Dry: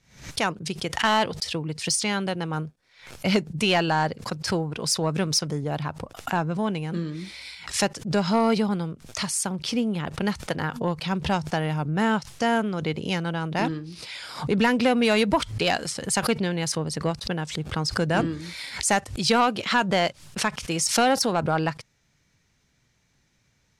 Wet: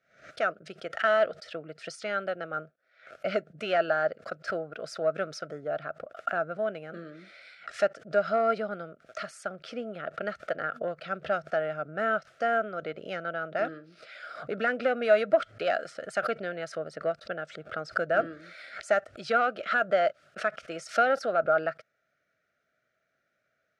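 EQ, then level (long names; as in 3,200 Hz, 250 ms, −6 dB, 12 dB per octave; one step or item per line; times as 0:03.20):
pair of resonant band-passes 930 Hz, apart 1.1 octaves
parametric band 1,000 Hz −8 dB 0.53 octaves
+7.0 dB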